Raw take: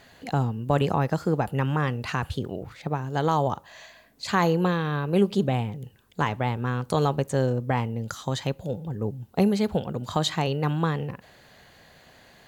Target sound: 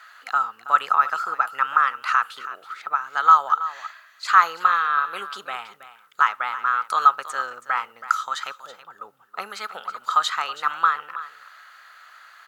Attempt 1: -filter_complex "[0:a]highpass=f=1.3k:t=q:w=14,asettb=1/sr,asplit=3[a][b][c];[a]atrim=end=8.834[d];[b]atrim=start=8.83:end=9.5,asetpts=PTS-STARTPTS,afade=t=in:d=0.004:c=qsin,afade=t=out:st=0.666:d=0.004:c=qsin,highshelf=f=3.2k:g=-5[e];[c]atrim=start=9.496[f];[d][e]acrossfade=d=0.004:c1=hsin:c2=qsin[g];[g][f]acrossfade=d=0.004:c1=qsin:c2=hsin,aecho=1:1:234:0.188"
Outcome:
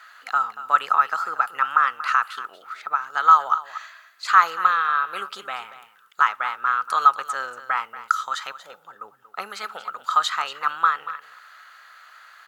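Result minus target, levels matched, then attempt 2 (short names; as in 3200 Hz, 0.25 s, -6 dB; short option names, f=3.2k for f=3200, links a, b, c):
echo 91 ms early
-filter_complex "[0:a]highpass=f=1.3k:t=q:w=14,asettb=1/sr,asplit=3[a][b][c];[a]atrim=end=8.834[d];[b]atrim=start=8.83:end=9.5,asetpts=PTS-STARTPTS,afade=t=in:d=0.004:c=qsin,afade=t=out:st=0.666:d=0.004:c=qsin,highshelf=f=3.2k:g=-5[e];[c]atrim=start=9.496[f];[d][e]acrossfade=d=0.004:c1=hsin:c2=qsin[g];[g][f]acrossfade=d=0.004:c1=qsin:c2=hsin,aecho=1:1:325:0.188"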